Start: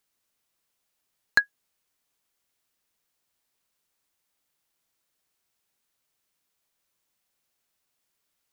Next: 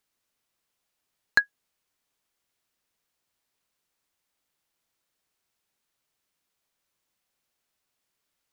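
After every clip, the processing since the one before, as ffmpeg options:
ffmpeg -i in.wav -af "highshelf=frequency=7100:gain=-4.5" out.wav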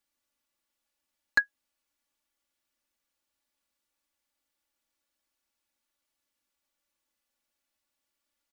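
ffmpeg -i in.wav -af "aecho=1:1:3.5:0.87,volume=-6dB" out.wav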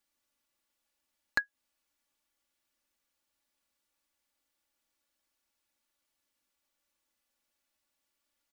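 ffmpeg -i in.wav -af "acompressor=threshold=-30dB:ratio=2.5,volume=1dB" out.wav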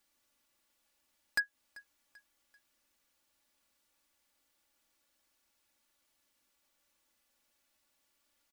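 ffmpeg -i in.wav -af "volume=31dB,asoftclip=hard,volume=-31dB,aecho=1:1:389|778|1167:0.0841|0.0353|0.0148,volume=5.5dB" out.wav

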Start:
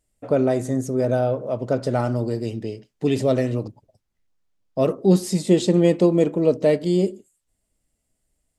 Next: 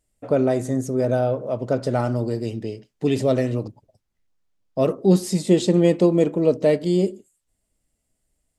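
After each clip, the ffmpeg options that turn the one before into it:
ffmpeg -i in.wav -af anull out.wav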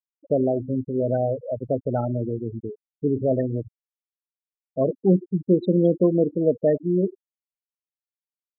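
ffmpeg -i in.wav -af "afftfilt=real='re*gte(hypot(re,im),0.178)':imag='im*gte(hypot(re,im),0.178)':win_size=1024:overlap=0.75,volume=-2dB" out.wav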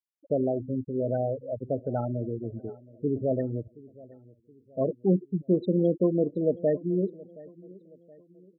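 ffmpeg -i in.wav -af "aecho=1:1:722|1444|2166:0.0841|0.0362|0.0156,volume=-5dB" out.wav

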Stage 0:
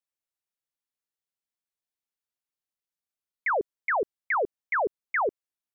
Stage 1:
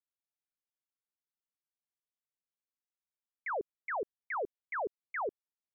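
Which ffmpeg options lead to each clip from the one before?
ffmpeg -i in.wav -af "lowpass=frequency=1800:poles=1,volume=-8.5dB" out.wav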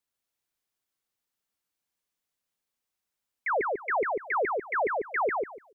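ffmpeg -i in.wav -af "aecho=1:1:146|292|438:0.708|0.127|0.0229,volume=8dB" out.wav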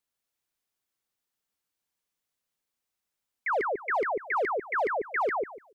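ffmpeg -i in.wav -af "volume=23.5dB,asoftclip=hard,volume=-23.5dB" out.wav

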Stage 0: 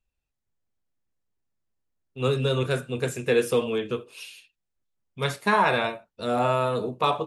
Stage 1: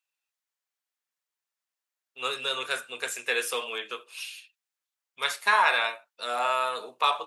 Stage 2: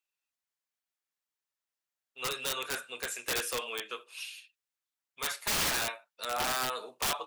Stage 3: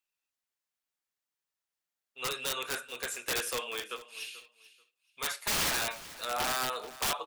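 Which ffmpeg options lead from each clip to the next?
ffmpeg -i in.wav -af "highpass=1100,volume=3.5dB" out.wav
ffmpeg -i in.wav -af "aeval=exprs='(mod(11.2*val(0)+1,2)-1)/11.2':channel_layout=same,volume=-3.5dB" out.wav
ffmpeg -i in.wav -af "aecho=1:1:435|870:0.133|0.0253" out.wav

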